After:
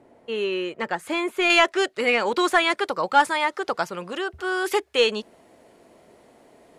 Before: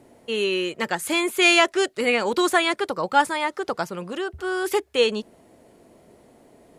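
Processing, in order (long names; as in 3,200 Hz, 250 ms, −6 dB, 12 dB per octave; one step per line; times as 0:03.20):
mid-hump overdrive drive 7 dB, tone 1,100 Hz, clips at −4.5 dBFS, from 0:01.50 tone 3,000 Hz, from 0:02.70 tone 5,200 Hz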